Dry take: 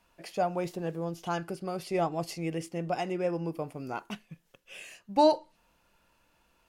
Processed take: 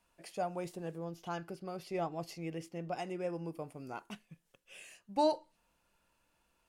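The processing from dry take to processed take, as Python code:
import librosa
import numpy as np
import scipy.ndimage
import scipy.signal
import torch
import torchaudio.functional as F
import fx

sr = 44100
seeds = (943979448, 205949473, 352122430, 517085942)

y = fx.peak_eq(x, sr, hz=8900.0, db=fx.steps((0.0, 7.0), (0.98, -4.0), (2.97, 5.5)), octaves=0.62)
y = y * librosa.db_to_amplitude(-7.5)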